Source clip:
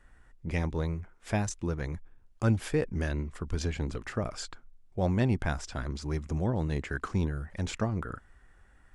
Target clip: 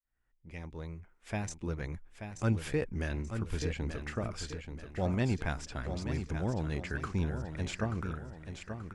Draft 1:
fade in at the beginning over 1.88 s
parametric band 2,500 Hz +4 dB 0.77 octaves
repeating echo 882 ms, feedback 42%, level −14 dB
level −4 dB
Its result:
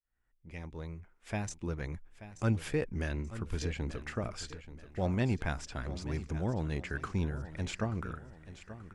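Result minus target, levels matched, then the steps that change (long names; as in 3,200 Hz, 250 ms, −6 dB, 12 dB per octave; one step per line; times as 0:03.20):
echo-to-direct −6 dB
change: repeating echo 882 ms, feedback 42%, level −8 dB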